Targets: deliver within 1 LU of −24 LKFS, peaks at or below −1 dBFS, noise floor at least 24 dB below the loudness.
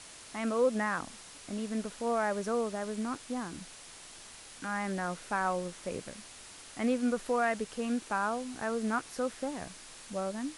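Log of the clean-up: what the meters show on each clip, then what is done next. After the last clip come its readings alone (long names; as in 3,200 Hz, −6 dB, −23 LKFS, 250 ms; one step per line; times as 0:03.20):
background noise floor −51 dBFS; target noise floor −58 dBFS; integrated loudness −33.5 LKFS; sample peak −17.5 dBFS; target loudness −24.0 LKFS
→ broadband denoise 7 dB, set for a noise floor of −51 dBFS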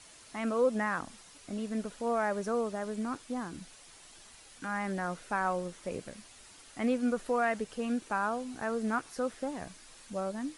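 background noise floor −55 dBFS; target noise floor −58 dBFS
→ broadband denoise 6 dB, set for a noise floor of −55 dBFS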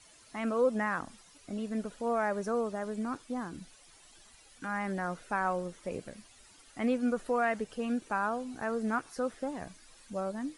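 background noise floor −59 dBFS; integrated loudness −34.0 LKFS; sample peak −17.5 dBFS; target loudness −24.0 LKFS
→ level +10 dB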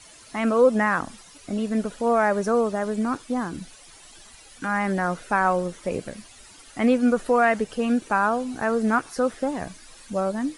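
integrated loudness −24.0 LKFS; sample peak −7.5 dBFS; background noise floor −49 dBFS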